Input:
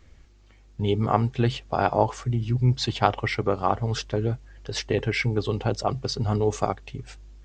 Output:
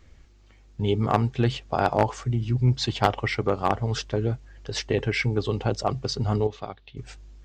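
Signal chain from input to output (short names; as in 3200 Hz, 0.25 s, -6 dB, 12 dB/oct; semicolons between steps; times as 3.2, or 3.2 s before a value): one-sided fold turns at -15 dBFS; 6.47–6.97 ladder low-pass 4200 Hz, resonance 60%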